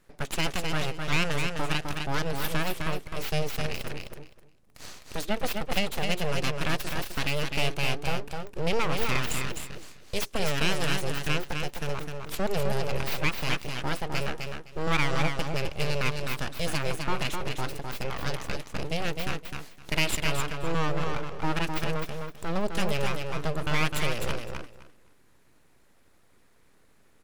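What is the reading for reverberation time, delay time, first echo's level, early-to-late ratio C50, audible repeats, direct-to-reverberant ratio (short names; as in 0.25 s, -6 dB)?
none, 0.257 s, -5.0 dB, none, 3, none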